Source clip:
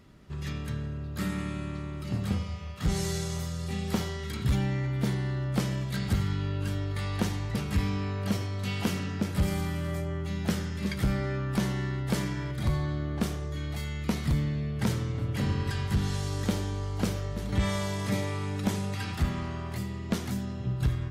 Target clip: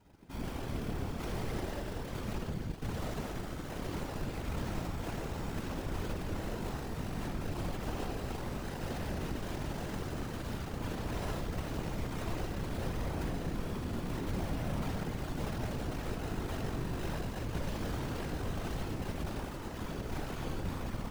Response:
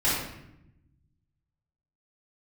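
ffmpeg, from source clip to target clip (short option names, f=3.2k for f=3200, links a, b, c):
-filter_complex "[0:a]acrusher=samples=39:mix=1:aa=0.000001,asoftclip=type=tanh:threshold=-35dB,asplit=2[a][b];[1:a]atrim=start_sample=2205,lowshelf=f=68:g=-4[c];[b][c]afir=irnorm=-1:irlink=0,volume=-13.5dB[d];[a][d]amix=inputs=2:normalize=0,aeval=exprs='0.1*(cos(1*acos(clip(val(0)/0.1,-1,1)))-cos(1*PI/2))+0.00398*(cos(2*acos(clip(val(0)/0.1,-1,1)))-cos(2*PI/2))+0.00631*(cos(4*acos(clip(val(0)/0.1,-1,1)))-cos(4*PI/2))+0.00178*(cos(5*acos(clip(val(0)/0.1,-1,1)))-cos(5*PI/2))+0.0447*(cos(8*acos(clip(val(0)/0.1,-1,1)))-cos(8*PI/2))':c=same,afftfilt=real='hypot(re,im)*cos(2*PI*random(0))':imag='hypot(re,im)*sin(2*PI*random(1))':win_size=512:overlap=0.75,volume=-4.5dB"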